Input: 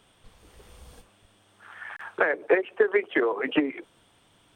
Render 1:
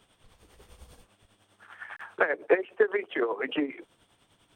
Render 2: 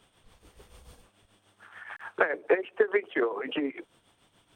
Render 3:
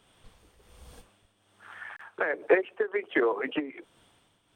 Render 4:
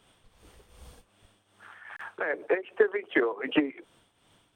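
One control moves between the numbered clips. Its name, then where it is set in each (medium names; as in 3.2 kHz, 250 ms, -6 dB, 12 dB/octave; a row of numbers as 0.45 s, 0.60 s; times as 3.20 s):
tremolo, rate: 10 Hz, 6.9 Hz, 1.3 Hz, 2.6 Hz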